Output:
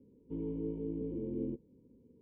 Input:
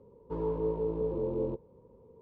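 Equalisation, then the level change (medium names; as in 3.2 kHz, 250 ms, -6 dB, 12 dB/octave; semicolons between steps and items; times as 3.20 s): cascade formant filter i; +6.0 dB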